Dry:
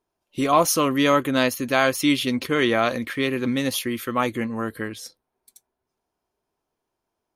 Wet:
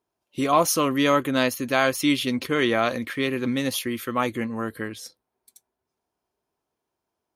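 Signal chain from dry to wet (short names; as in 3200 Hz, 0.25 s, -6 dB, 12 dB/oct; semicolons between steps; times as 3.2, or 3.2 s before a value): HPF 48 Hz; gain -1.5 dB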